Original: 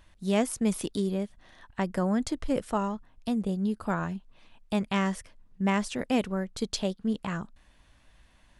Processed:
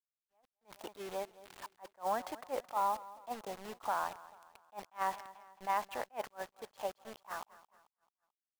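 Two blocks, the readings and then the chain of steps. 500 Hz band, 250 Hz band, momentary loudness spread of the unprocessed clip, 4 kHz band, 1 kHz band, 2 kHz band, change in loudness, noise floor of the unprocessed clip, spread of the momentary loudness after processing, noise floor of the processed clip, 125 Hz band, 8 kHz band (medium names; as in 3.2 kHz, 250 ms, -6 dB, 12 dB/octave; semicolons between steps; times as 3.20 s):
-10.0 dB, -26.0 dB, 9 LU, -13.0 dB, -1.0 dB, -9.0 dB, -9.5 dB, -61 dBFS, 16 LU, under -85 dBFS, under -25 dB, -13.0 dB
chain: fade out at the end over 2.39 s; in parallel at -3 dB: compression 5:1, threshold -42 dBFS, peak gain reduction 20 dB; on the sum: ladder band-pass 950 Hz, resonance 55%; level rider gain up to 15.5 dB; peak limiter -18 dBFS, peak gain reduction 9 dB; Chebyshev shaper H 2 -27 dB, 4 -30 dB, 5 -43 dB, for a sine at -18 dBFS; bit crusher 7-bit; feedback delay 219 ms, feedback 45%, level -18.5 dB; attacks held to a fixed rise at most 350 dB/s; trim -5 dB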